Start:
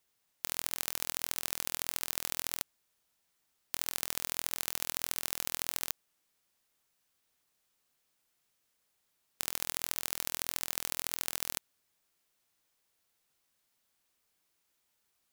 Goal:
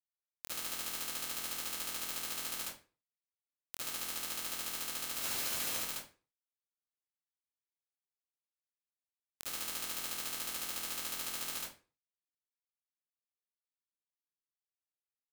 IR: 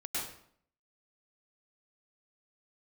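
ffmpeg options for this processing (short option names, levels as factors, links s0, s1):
-filter_complex "[0:a]asettb=1/sr,asplit=3[s0][s1][s2];[s0]atrim=end=5.154[s3];[s1]atrim=start=5.15:end=5.77,asetpts=PTS-STARTPTS,afade=t=in:d=0.004:c=qsin,afade=t=out:st=0.616:d=0.004:c=qsin,aeval=exprs='val(0)+0.5*0.0251*sgn(val(0))':c=same[s4];[s2]atrim=start=5.766[s5];[s3][s4]acrossfade=d=0.004:c1=hsin:c2=qsin[s6];[s6][s5]acrossfade=d=0.004:c1=qsin:c2=hsin,acrusher=bits=7:mix=0:aa=0.000001[s7];[1:a]atrim=start_sample=2205,asetrate=79380,aresample=44100[s8];[s7][s8]afir=irnorm=-1:irlink=0"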